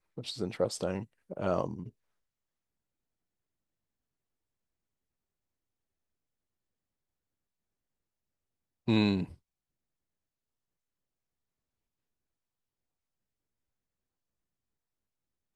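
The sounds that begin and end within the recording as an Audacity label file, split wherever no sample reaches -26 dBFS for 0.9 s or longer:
8.880000	9.230000	sound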